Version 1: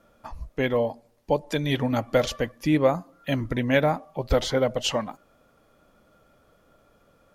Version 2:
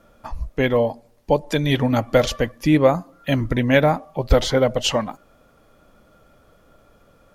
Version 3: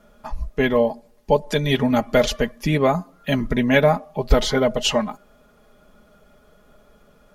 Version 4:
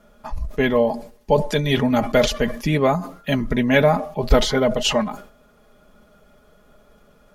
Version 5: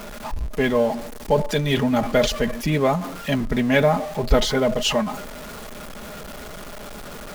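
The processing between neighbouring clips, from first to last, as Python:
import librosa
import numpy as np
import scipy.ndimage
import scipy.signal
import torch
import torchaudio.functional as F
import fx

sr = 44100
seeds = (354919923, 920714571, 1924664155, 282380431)

y1 = fx.low_shelf(x, sr, hz=75.0, db=6.0)
y1 = y1 * 10.0 ** (5.0 / 20.0)
y2 = y1 + 0.65 * np.pad(y1, (int(4.8 * sr / 1000.0), 0))[:len(y1)]
y2 = y2 * 10.0 ** (-1.0 / 20.0)
y3 = fx.sustainer(y2, sr, db_per_s=110.0)
y4 = y3 + 0.5 * 10.0 ** (-28.0 / 20.0) * np.sign(y3)
y4 = y4 * 10.0 ** (-2.5 / 20.0)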